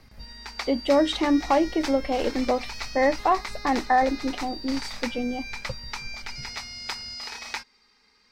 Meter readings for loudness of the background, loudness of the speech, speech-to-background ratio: -35.5 LUFS, -25.0 LUFS, 10.5 dB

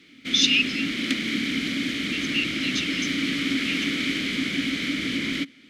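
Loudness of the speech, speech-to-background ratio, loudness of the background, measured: -25.0 LUFS, 0.5 dB, -25.5 LUFS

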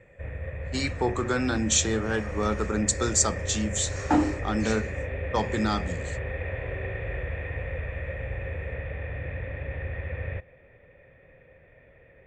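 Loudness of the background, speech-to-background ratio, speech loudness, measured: -34.0 LUFS, 7.0 dB, -27.0 LUFS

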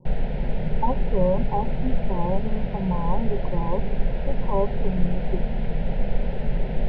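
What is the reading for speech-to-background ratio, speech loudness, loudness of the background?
0.5 dB, -29.0 LUFS, -29.5 LUFS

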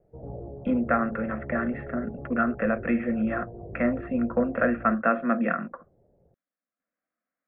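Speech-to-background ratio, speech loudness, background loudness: 13.5 dB, -27.0 LUFS, -40.5 LUFS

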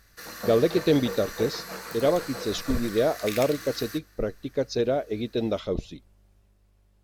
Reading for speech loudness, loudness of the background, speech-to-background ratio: -27.0 LUFS, -36.5 LUFS, 9.5 dB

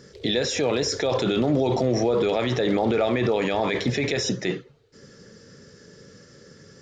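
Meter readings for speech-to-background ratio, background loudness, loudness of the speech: 17.5 dB, -41.0 LUFS, -23.5 LUFS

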